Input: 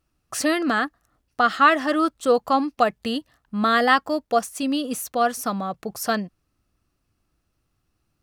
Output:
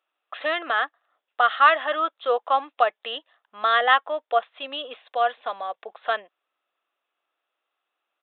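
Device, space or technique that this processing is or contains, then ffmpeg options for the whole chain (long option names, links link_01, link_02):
musical greeting card: -filter_complex "[0:a]asettb=1/sr,asplit=3[link_01][link_02][link_03];[link_01]atrim=end=4.974[link_04];[link_02]atrim=start=4.97:end=5.9,asetpts=PTS-STARTPTS,afade=type=in:duration=0.004:curve=qsin,afade=type=out:start_time=0.926:duration=0.004:curve=qsin,bandreject=frequency=1300:width=7.2[link_05];[link_03]atrim=start=5.896[link_06];[link_04][link_05]acrossfade=duration=0.004:curve1=hsin:curve2=qsin[link_07];[link_07][link_06]acrossfade=duration=0.004:curve1=qsin:curve2=hsin,aresample=8000,aresample=44100,highpass=frequency=530:width=0.5412,highpass=frequency=530:width=1.3066,equalizer=frequency=3500:width_type=o:width=0.31:gain=4.5"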